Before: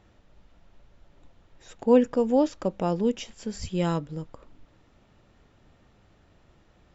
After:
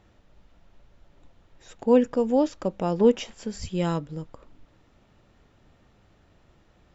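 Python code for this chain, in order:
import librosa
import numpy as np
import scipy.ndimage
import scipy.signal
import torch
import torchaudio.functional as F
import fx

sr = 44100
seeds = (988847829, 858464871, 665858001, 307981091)

y = fx.peak_eq(x, sr, hz=860.0, db=fx.line((2.99, 13.0), (3.47, 2.5)), octaves=3.0, at=(2.99, 3.47), fade=0.02)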